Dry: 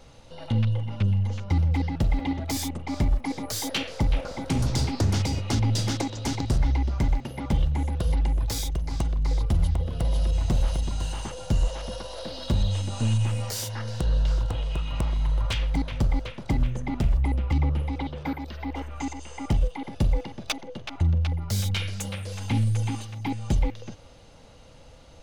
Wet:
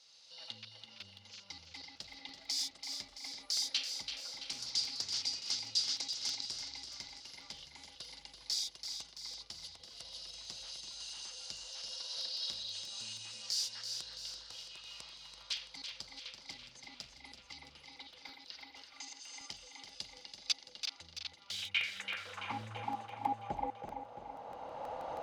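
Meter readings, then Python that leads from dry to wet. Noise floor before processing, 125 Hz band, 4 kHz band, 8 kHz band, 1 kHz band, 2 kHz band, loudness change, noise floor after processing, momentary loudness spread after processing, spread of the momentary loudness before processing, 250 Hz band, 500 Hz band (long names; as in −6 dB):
−48 dBFS, −35.5 dB, −0.5 dB, −5.0 dB, −7.5 dB, −7.0 dB, −12.5 dB, −60 dBFS, 15 LU, 8 LU, −26.5 dB, −16.5 dB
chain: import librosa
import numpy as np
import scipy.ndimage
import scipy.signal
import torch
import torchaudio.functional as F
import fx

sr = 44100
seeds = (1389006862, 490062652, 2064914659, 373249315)

p1 = fx.recorder_agc(x, sr, target_db=-22.0, rise_db_per_s=14.0, max_gain_db=30)
p2 = fx.filter_sweep_bandpass(p1, sr, from_hz=4800.0, to_hz=810.0, start_s=21.18, end_s=22.75, q=3.6)
p3 = p2 + fx.echo_feedback(p2, sr, ms=334, feedback_pct=54, wet_db=-8, dry=0)
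p4 = fx.buffer_crackle(p3, sr, first_s=0.85, period_s=0.16, block=64, kind='repeat')
y = F.gain(torch.from_numpy(p4), 3.0).numpy()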